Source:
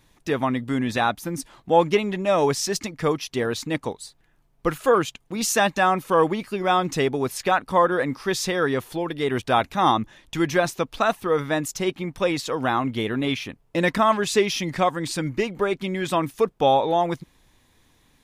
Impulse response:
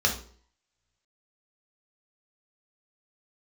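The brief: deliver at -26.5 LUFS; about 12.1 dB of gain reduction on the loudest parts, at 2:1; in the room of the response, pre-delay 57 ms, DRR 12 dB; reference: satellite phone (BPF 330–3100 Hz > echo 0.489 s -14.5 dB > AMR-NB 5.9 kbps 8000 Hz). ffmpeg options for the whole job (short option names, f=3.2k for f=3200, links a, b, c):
-filter_complex "[0:a]acompressor=threshold=-36dB:ratio=2,asplit=2[a][b];[1:a]atrim=start_sample=2205,adelay=57[c];[b][c]afir=irnorm=-1:irlink=0,volume=-24dB[d];[a][d]amix=inputs=2:normalize=0,highpass=330,lowpass=3.1k,aecho=1:1:489:0.188,volume=9.5dB" -ar 8000 -c:a libopencore_amrnb -b:a 5900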